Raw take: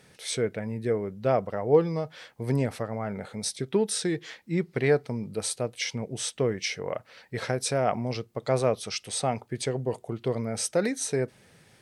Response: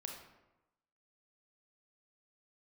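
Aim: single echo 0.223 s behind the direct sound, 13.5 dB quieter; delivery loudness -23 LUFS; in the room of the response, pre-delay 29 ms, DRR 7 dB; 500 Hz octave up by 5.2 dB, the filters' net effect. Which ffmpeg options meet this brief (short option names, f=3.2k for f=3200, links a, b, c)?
-filter_complex "[0:a]equalizer=f=500:t=o:g=6,aecho=1:1:223:0.211,asplit=2[a][b];[1:a]atrim=start_sample=2205,adelay=29[c];[b][c]afir=irnorm=-1:irlink=0,volume=-4.5dB[d];[a][d]amix=inputs=2:normalize=0,volume=1.5dB"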